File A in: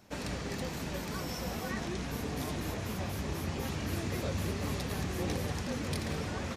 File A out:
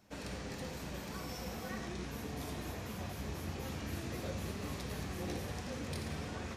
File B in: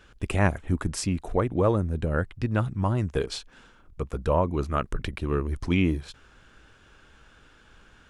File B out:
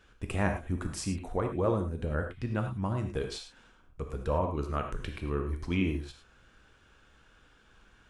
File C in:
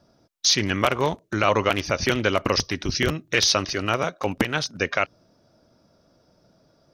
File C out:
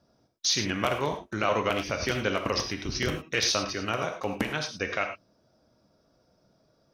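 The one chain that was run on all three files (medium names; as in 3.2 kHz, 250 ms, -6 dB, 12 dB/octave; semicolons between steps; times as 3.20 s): gated-style reverb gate 130 ms flat, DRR 4 dB; trim -7 dB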